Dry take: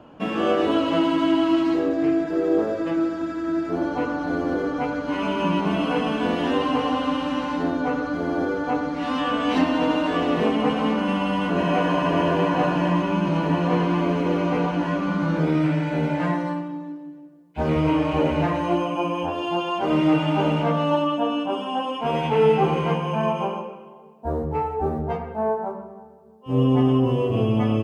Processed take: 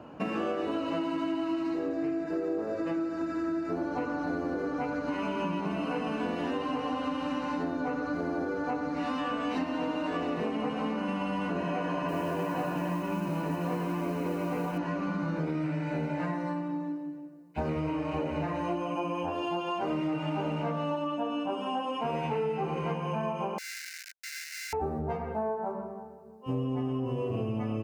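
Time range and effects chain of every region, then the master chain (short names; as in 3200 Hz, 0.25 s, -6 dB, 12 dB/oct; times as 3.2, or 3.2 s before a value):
12.08–14.78 notch 4400 Hz, Q 28 + modulation noise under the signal 26 dB
23.58–24.73 sample sorter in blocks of 64 samples + Schmitt trigger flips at -43.5 dBFS + rippled Chebyshev high-pass 1500 Hz, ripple 6 dB
whole clip: HPF 54 Hz; notch 3300 Hz, Q 5.3; compressor, threshold -29 dBFS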